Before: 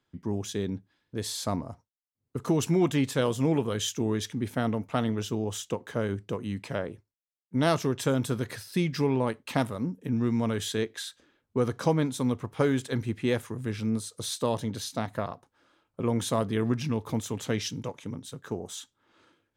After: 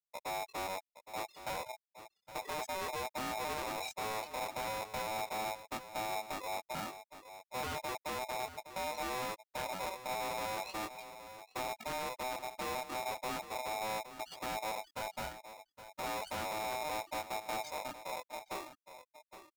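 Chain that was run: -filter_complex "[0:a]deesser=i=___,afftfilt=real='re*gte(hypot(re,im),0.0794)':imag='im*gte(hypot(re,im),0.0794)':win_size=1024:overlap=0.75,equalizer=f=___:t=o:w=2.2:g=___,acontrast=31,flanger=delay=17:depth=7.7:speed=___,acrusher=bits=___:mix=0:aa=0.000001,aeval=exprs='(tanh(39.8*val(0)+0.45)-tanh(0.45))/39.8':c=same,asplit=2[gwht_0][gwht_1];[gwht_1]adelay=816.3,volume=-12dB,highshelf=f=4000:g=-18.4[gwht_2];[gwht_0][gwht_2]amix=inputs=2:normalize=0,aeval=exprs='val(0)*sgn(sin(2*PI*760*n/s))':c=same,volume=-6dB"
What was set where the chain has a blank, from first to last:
0.25, 110, 7.5, 0.35, 10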